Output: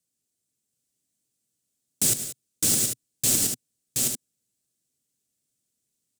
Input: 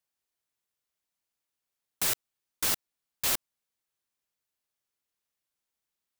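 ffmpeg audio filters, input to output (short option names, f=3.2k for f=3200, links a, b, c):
-af "equalizer=f=125:t=o:w=1:g=12,equalizer=f=250:t=o:w=1:g=11,equalizer=f=500:t=o:w=1:g=3,equalizer=f=1k:t=o:w=1:g=-11,equalizer=f=2k:t=o:w=1:g=-4,equalizer=f=8k:t=o:w=1:g=12,aecho=1:1:105|177|190|724|797:0.237|0.168|0.141|0.708|0.376"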